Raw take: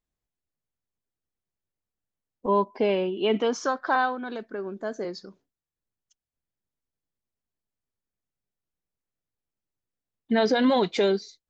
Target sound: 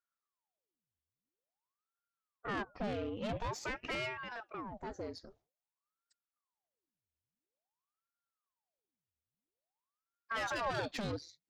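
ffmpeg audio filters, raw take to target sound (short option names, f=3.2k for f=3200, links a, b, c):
-filter_complex "[0:a]aeval=exprs='(tanh(20*val(0)+0.35)-tanh(0.35))/20':c=same,asettb=1/sr,asplit=3[a][b][c];[a]atrim=end=10.664[d];[b]atrim=start=10.66:end=11.13,asetpts=PTS-STARTPTS,afade=t=in:d=0.004:c=qsin,afade=t=out:st=0.466:d=0.004:c=qsin,aecho=1:1:1:0.65,atrim=end_sample=20727[e];[c]atrim=start=11.126[f];[d][e]acrossfade=d=0.004:c1=hsin:c2=qsin[g];[g][f]acrossfade=d=0.004:c1=qsin:c2=hsin,aeval=exprs='val(0)*sin(2*PI*740*n/s+740*0.9/0.49*sin(2*PI*0.49*n/s))':c=same,volume=-5.5dB"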